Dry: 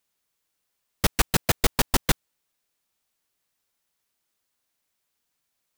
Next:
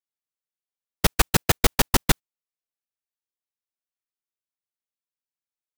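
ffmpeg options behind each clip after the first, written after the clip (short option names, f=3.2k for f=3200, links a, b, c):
-af "agate=range=-24dB:threshold=-26dB:ratio=16:detection=peak,volume=3dB"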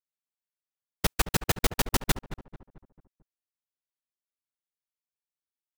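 -filter_complex "[0:a]asplit=2[a][b];[b]adelay=221,lowpass=f=1.4k:p=1,volume=-12dB,asplit=2[c][d];[d]adelay=221,lowpass=f=1.4k:p=1,volume=0.47,asplit=2[e][f];[f]adelay=221,lowpass=f=1.4k:p=1,volume=0.47,asplit=2[g][h];[h]adelay=221,lowpass=f=1.4k:p=1,volume=0.47,asplit=2[i][j];[j]adelay=221,lowpass=f=1.4k:p=1,volume=0.47[k];[a][c][e][g][i][k]amix=inputs=6:normalize=0,volume=-6.5dB"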